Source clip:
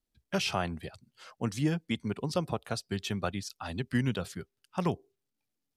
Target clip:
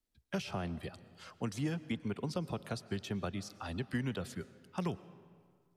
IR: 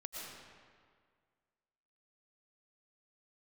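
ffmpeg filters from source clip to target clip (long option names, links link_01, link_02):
-filter_complex "[0:a]acrossover=split=200|450|1500[link_01][link_02][link_03][link_04];[link_01]acompressor=threshold=-37dB:ratio=4[link_05];[link_02]acompressor=threshold=-37dB:ratio=4[link_06];[link_03]acompressor=threshold=-42dB:ratio=4[link_07];[link_04]acompressor=threshold=-45dB:ratio=4[link_08];[link_05][link_06][link_07][link_08]amix=inputs=4:normalize=0,asplit=2[link_09][link_10];[1:a]atrim=start_sample=2205[link_11];[link_10][link_11]afir=irnorm=-1:irlink=0,volume=-12.5dB[link_12];[link_09][link_12]amix=inputs=2:normalize=0,volume=-2.5dB"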